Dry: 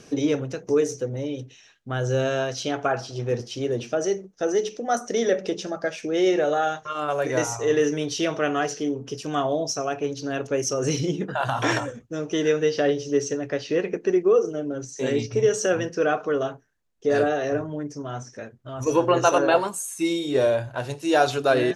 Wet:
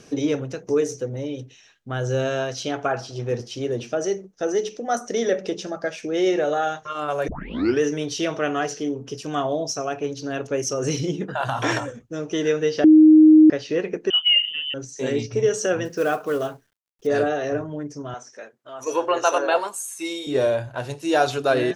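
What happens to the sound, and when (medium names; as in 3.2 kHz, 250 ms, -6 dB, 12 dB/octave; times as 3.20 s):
7.28 s: tape start 0.53 s
12.84–13.50 s: bleep 311 Hz -7 dBFS
14.10–14.74 s: frequency inversion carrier 3.3 kHz
15.85–17.07 s: companded quantiser 6-bit
18.14–20.27 s: high-pass 460 Hz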